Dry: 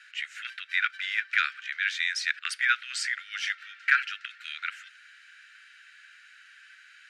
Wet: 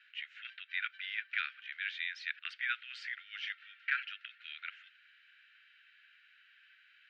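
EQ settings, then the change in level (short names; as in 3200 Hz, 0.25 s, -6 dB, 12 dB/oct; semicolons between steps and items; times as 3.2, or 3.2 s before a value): HPF 1200 Hz 6 dB/oct; ladder low-pass 3800 Hz, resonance 40%; -3.5 dB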